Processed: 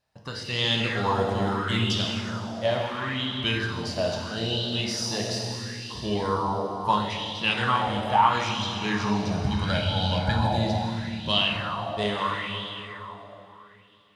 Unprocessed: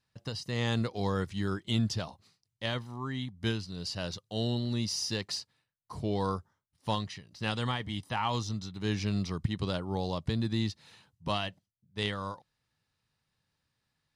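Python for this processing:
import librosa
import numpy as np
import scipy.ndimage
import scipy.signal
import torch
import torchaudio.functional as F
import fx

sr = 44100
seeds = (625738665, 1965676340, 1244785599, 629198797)

y = fx.comb(x, sr, ms=1.3, depth=0.96, at=(9.31, 10.58))
y = fx.rev_plate(y, sr, seeds[0], rt60_s=3.8, hf_ratio=0.8, predelay_ms=0, drr_db=-2.5)
y = fx.bell_lfo(y, sr, hz=0.75, low_hz=630.0, high_hz=3300.0, db=14)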